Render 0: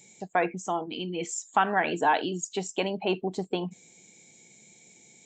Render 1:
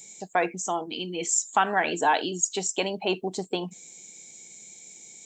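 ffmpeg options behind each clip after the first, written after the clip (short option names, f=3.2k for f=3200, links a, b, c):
-af "bass=f=250:g=-4,treble=f=4k:g=10,volume=1dB"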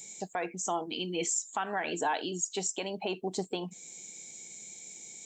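-af "alimiter=limit=-21dB:level=0:latency=1:release=385"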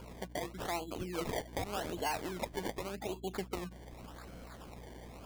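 -af "acrusher=samples=23:mix=1:aa=0.000001:lfo=1:lforange=23:lforate=0.86,aeval=exprs='val(0)+0.00501*(sin(2*PI*60*n/s)+sin(2*PI*2*60*n/s)/2+sin(2*PI*3*60*n/s)/3+sin(2*PI*4*60*n/s)/4+sin(2*PI*5*60*n/s)/5)':c=same,volume=-5dB"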